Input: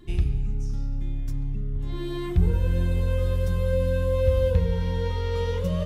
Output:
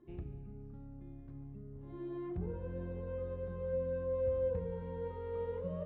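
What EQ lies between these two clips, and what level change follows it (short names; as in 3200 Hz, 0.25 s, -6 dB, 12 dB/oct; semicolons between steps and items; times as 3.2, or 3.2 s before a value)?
band-pass 520 Hz, Q 0.67; air absorption 440 m; -7.5 dB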